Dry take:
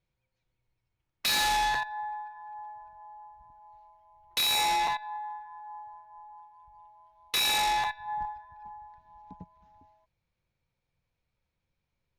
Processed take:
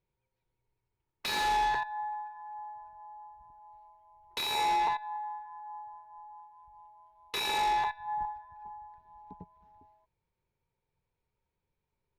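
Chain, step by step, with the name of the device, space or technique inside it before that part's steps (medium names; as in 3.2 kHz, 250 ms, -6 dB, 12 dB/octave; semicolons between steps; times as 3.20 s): inside a helmet (treble shelf 4.3 kHz -10 dB; small resonant body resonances 410/910 Hz, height 11 dB, ringing for 45 ms); trim -3 dB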